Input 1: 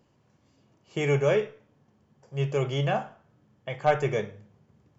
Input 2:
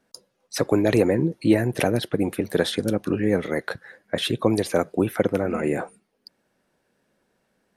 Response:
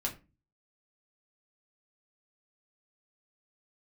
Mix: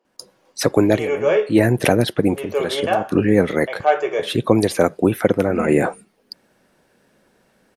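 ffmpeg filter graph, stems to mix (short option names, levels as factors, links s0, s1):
-filter_complex "[0:a]highpass=f=340:w=0.5412,highpass=f=340:w=1.3066,highshelf=f=5100:g=-11.5,volume=0.531,asplit=3[s0][s1][s2];[s1]volume=0.596[s3];[1:a]adelay=50,volume=1.06[s4];[s2]apad=whole_len=344445[s5];[s4][s5]sidechaincompress=threshold=0.00398:ratio=8:attack=27:release=164[s6];[2:a]atrim=start_sample=2205[s7];[s3][s7]afir=irnorm=-1:irlink=0[s8];[s0][s6][s8]amix=inputs=3:normalize=0,dynaudnorm=f=150:g=3:m=3.16"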